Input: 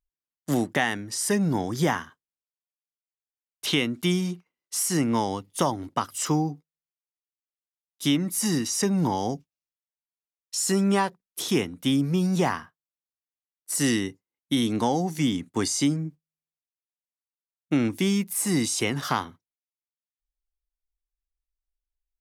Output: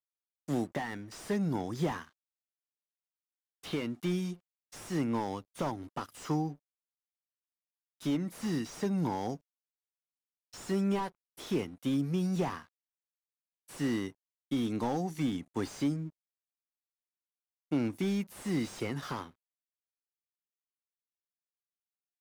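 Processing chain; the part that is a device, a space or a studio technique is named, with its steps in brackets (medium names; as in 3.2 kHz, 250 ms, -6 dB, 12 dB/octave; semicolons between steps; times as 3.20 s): early transistor amplifier (crossover distortion -53.5 dBFS; slew-rate limiter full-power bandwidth 56 Hz); trim -7 dB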